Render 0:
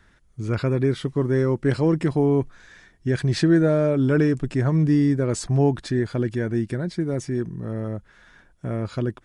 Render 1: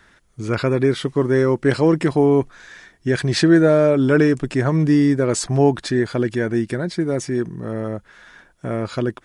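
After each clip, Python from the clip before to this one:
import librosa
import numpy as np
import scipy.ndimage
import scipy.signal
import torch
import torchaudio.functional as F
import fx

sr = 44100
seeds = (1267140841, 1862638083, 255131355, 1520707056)

y = fx.low_shelf(x, sr, hz=190.0, db=-11.0)
y = F.gain(torch.from_numpy(y), 7.5).numpy()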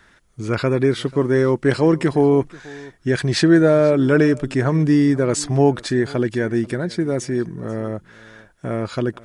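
y = x + 10.0 ** (-22.0 / 20.0) * np.pad(x, (int(488 * sr / 1000.0), 0))[:len(x)]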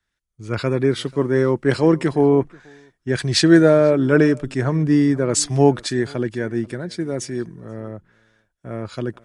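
y = fx.band_widen(x, sr, depth_pct=70)
y = F.gain(torch.from_numpy(y), -1.0).numpy()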